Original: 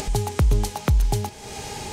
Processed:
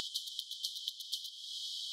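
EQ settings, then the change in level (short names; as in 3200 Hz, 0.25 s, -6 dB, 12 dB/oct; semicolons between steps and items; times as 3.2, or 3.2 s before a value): brick-wall FIR high-pass 3000 Hz; air absorption 380 m; high shelf 8600 Hz +6.5 dB; +12.0 dB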